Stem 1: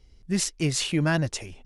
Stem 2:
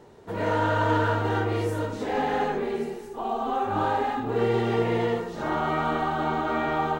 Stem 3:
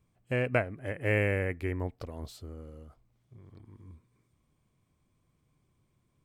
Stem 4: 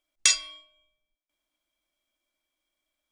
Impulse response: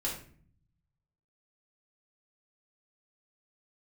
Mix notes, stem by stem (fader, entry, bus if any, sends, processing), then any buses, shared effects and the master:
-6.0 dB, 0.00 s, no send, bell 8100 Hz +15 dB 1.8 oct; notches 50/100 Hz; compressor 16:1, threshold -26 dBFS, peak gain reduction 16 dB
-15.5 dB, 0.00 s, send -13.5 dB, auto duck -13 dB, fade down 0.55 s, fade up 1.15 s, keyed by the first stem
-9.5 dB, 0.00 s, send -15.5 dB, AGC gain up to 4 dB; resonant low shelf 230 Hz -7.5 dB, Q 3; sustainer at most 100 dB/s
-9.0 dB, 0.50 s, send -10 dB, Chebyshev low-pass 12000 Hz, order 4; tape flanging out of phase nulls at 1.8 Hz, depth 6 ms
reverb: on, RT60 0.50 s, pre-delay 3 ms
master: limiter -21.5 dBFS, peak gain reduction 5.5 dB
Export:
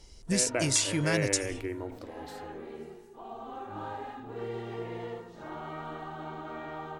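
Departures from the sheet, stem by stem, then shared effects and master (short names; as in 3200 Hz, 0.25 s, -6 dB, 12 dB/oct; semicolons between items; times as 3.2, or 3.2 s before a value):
stem 1 -6.0 dB -> +1.5 dB; master: missing limiter -21.5 dBFS, peak gain reduction 5.5 dB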